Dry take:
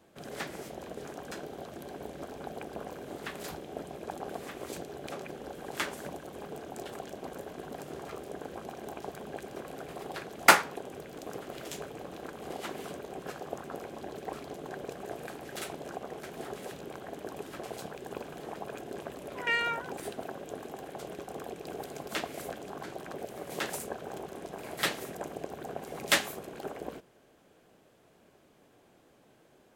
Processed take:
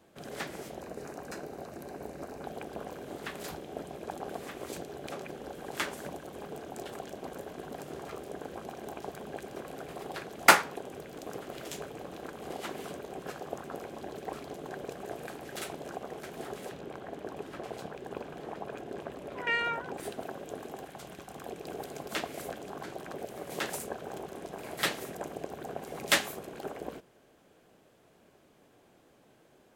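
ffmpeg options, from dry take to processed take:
-filter_complex "[0:a]asettb=1/sr,asplit=3[a][b][c];[a]atrim=end=0.804[d];[b]atrim=start=0.8:end=2.44,asetpts=PTS-STARTPTS,afade=t=in:d=0.004:c=qsin,afade=t=out:st=1.636:d=0.004:c=qsin,equalizer=f=3.3k:t=o:w=0.23:g=-14[e];[c]atrim=start=2.436[f];[d][e]acrossfade=d=0.004:c1=hsin:c2=qsin[g];[g][f]acrossfade=d=0.004:c1=qsin:c2=hsin,asettb=1/sr,asplit=3[h][i][j];[h]atrim=end=16.694[k];[i]atrim=start=16.69:end=20,asetpts=PTS-STARTPTS,afade=t=in:d=0.004:c=qsin,afade=t=out:st=3.306:d=0.004:c=qsin,aemphasis=mode=reproduction:type=cd[l];[j]atrim=start=19.996[m];[k][l]acrossfade=d=0.004:c1=hsin:c2=qsin[n];[n][m]acrossfade=d=0.004:c1=qsin:c2=hsin,asettb=1/sr,asplit=3[o][p][q];[o]atrim=end=20.854[r];[p]atrim=start=20.85:end=21.44,asetpts=PTS-STARTPTS,afade=t=in:d=0.004:c=qsin,afade=t=out:st=0.586:d=0.004:c=qsin,equalizer=f=440:t=o:w=1.3:g=-8.5[s];[q]atrim=start=21.436[t];[r][s]acrossfade=d=0.004:c1=hsin:c2=qsin[u];[u][t]acrossfade=d=0.004:c1=qsin:c2=hsin"

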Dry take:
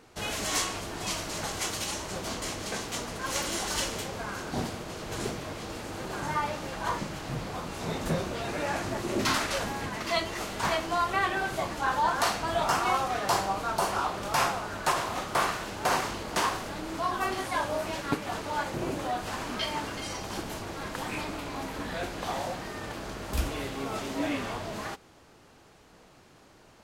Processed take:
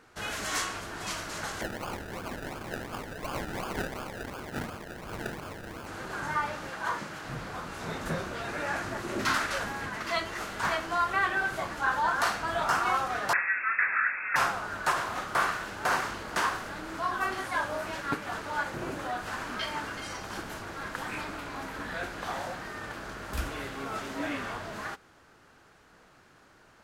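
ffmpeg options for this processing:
-filter_complex "[0:a]asettb=1/sr,asplit=3[a][b][c];[a]atrim=end=1.614[d];[b]atrim=start=1.61:end=5.87,asetpts=PTS-STARTPTS,afade=t=in:d=0.004:c=qsin,afade=t=out:st=4.256:d=0.004:c=qsin,acrusher=samples=32:mix=1:aa=0.000001:lfo=1:lforange=19.2:lforate=2.8[e];[c]atrim=start=5.866[f];[d][e]acrossfade=d=0.004:c1=hsin:c2=qsin[g];[g][f]acrossfade=d=0.004:c1=qsin:c2=hsin,asettb=1/sr,asplit=3[h][i][j];[h]atrim=end=6.704[k];[i]atrim=start=6.7:end=7.25,asetpts=PTS-STARTPTS,afade=t=in:d=0.004:c=qsin,afade=t=out:st=0.546:d=0.004:c=qsin,highpass=f=170:p=1[l];[j]atrim=start=7.246[m];[k][l]acrossfade=d=0.004:c1=hsin:c2=qsin[n];[n][m]acrossfade=d=0.004:c1=qsin:c2=hsin,asettb=1/sr,asplit=3[o][p][q];[o]atrim=end=13.334[r];[p]atrim=start=13.33:end=14.36,asetpts=PTS-STARTPTS,afade=t=in:d=0.004:c=qsin,afade=t=out:st=1.026:d=0.004:c=qsin,lowpass=f=2.3k:t=q:w=0.5098,lowpass=f=2.3k:t=q:w=0.6013,lowpass=f=2.3k:t=q:w=0.9,lowpass=f=2.3k:t=q:w=2.563,afreqshift=-2700[s];[q]atrim=start=14.356[t];[r][s]acrossfade=d=0.004:c1=hsin:c2=qsin[u];[u][t]acrossfade=d=0.004:c1=qsin:c2=hsin,equalizer=f=1.5k:w=1.7:g=9,volume=-4.5dB"

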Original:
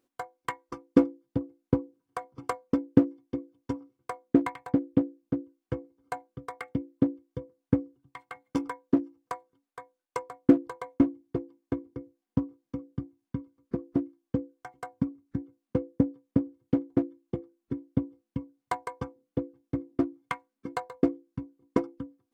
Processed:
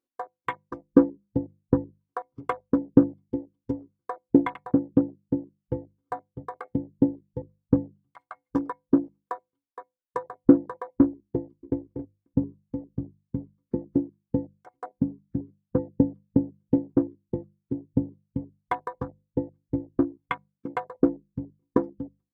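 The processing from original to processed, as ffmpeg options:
-filter_complex "[0:a]asplit=2[a][b];[b]afade=t=in:st=11.36:d=0.01,afade=t=out:st=11.79:d=0.01,aecho=0:1:270|540:0.251189|0.0251189[c];[a][c]amix=inputs=2:normalize=0,bandreject=f=690:w=22,afwtdn=0.0112,bandreject=f=50:t=h:w=6,bandreject=f=100:t=h:w=6,bandreject=f=150:t=h:w=6,bandreject=f=200:t=h:w=6,volume=3.5dB"

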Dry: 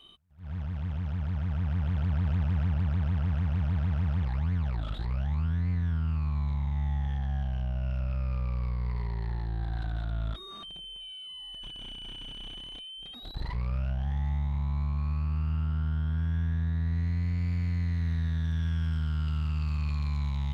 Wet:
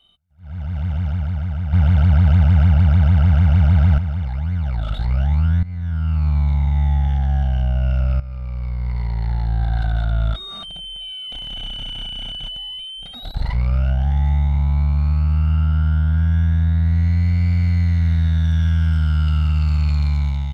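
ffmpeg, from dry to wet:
-filter_complex "[0:a]asplit=7[a][b][c][d][e][f][g];[a]atrim=end=1.732[h];[b]atrim=start=1.728:end=3.982,asetpts=PTS-STARTPTS,volume=9dB[i];[c]atrim=start=3.978:end=5.63,asetpts=PTS-STARTPTS,afade=t=out:st=1.648:d=0.004:c=hsin:silence=0.133352[j];[d]atrim=start=5.63:end=8.2,asetpts=PTS-STARTPTS,afade=t=in:d=0.66:silence=0.133352,afade=t=out:st=2.566:d=0.004:c=hsin:silence=0.177828[k];[e]atrim=start=8.2:end=11.322,asetpts=PTS-STARTPTS,afade=t=in:d=1.34:silence=0.177828[l];[f]atrim=start=11.318:end=12.792,asetpts=PTS-STARTPTS,areverse[m];[g]atrim=start=12.788[n];[h][i]acrossfade=d=0.004:c1=hsin:c2=hsin[o];[j][k][l]concat=n=3:v=0:a=1[p];[o][p]acrossfade=d=0.004:c1=hsin:c2=hsin[q];[q][m]acrossfade=d=0.004:c1=hsin:c2=hsin[r];[r][n]acrossfade=d=0.004:c1=hsin:c2=hsin,aecho=1:1:1.4:0.59,dynaudnorm=f=260:g=5:m=14.5dB,volume=-5dB"

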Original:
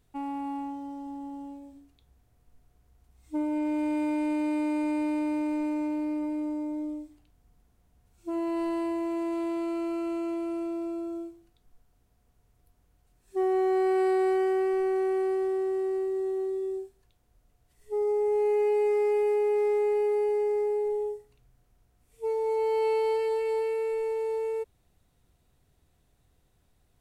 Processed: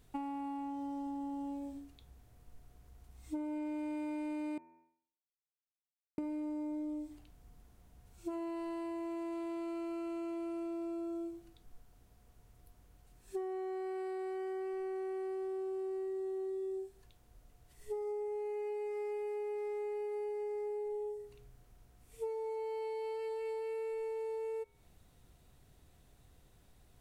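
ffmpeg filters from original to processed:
-filter_complex "[0:a]asplit=3[a][b][c];[a]atrim=end=4.58,asetpts=PTS-STARTPTS,afade=t=out:st=4.576:d=0.004:c=hsin[d];[b]atrim=start=4.58:end=6.18,asetpts=PTS-STARTPTS,volume=0[e];[c]atrim=start=6.18,asetpts=PTS-STARTPTS,afade=t=in:d=0.004:c=hsin[f];[d][e][f]concat=n=3:v=0:a=1,bandreject=f=82.75:t=h:w=4,bandreject=f=165.5:t=h:w=4,bandreject=f=248.25:t=h:w=4,bandreject=f=331:t=h:w=4,bandreject=f=413.75:t=h:w=4,bandreject=f=496.5:t=h:w=4,bandreject=f=579.25:t=h:w=4,bandreject=f=662:t=h:w=4,bandreject=f=744.75:t=h:w=4,bandreject=f=827.5:t=h:w=4,bandreject=f=910.25:t=h:w=4,bandreject=f=993:t=h:w=4,bandreject=f=1.07575k:t=h:w=4,bandreject=f=1.1585k:t=h:w=4,bandreject=f=1.24125k:t=h:w=4,bandreject=f=1.324k:t=h:w=4,bandreject=f=1.40675k:t=h:w=4,bandreject=f=1.4895k:t=h:w=4,bandreject=f=1.57225k:t=h:w=4,bandreject=f=1.655k:t=h:w=4,bandreject=f=1.73775k:t=h:w=4,bandreject=f=1.8205k:t=h:w=4,bandreject=f=1.90325k:t=h:w=4,bandreject=f=1.986k:t=h:w=4,bandreject=f=2.06875k:t=h:w=4,bandreject=f=2.1515k:t=h:w=4,bandreject=f=2.23425k:t=h:w=4,bandreject=f=2.317k:t=h:w=4,bandreject=f=2.39975k:t=h:w=4,bandreject=f=2.4825k:t=h:w=4,bandreject=f=2.56525k:t=h:w=4,bandreject=f=2.648k:t=h:w=4,acompressor=threshold=-41dB:ratio=20,volume=4.5dB"

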